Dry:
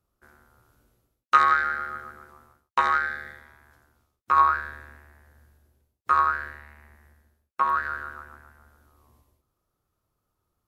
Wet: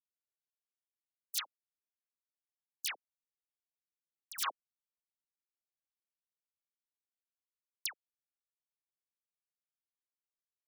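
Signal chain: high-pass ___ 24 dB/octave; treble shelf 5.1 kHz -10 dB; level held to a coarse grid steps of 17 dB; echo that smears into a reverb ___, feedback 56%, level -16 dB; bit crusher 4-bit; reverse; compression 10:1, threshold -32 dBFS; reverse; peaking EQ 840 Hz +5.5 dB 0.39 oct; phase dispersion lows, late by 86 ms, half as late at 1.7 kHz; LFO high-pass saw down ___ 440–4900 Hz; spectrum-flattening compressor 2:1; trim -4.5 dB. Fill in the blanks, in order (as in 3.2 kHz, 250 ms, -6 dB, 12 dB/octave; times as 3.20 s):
130 Hz, 1732 ms, 0.8 Hz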